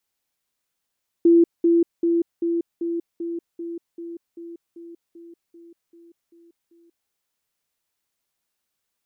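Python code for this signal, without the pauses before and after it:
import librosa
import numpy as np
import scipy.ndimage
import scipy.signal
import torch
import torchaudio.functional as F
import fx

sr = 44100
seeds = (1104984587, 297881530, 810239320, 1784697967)

y = fx.level_ladder(sr, hz=338.0, from_db=-10.5, step_db=-3.0, steps=15, dwell_s=0.19, gap_s=0.2)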